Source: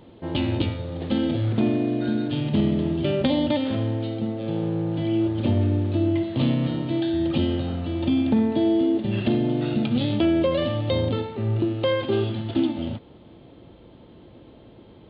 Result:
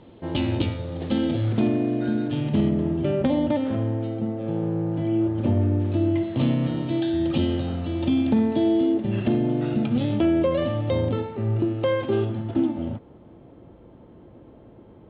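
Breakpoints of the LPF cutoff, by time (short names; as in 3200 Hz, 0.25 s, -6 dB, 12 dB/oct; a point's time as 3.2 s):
4200 Hz
from 1.67 s 2700 Hz
from 2.69 s 1800 Hz
from 5.8 s 2900 Hz
from 6.77 s 4200 Hz
from 8.94 s 2300 Hz
from 12.25 s 1600 Hz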